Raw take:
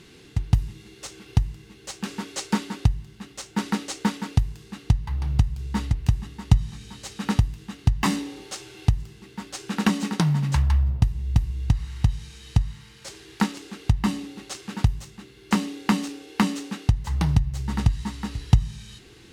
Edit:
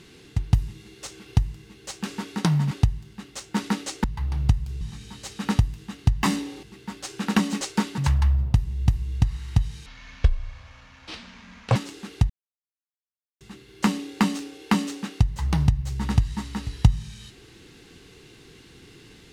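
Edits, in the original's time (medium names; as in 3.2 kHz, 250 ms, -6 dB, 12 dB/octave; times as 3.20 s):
2.36–2.73 s: swap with 10.11–10.46 s
4.06–4.94 s: delete
5.71–6.61 s: delete
8.43–9.13 s: delete
12.34–13.44 s: speed 58%
13.98–15.09 s: mute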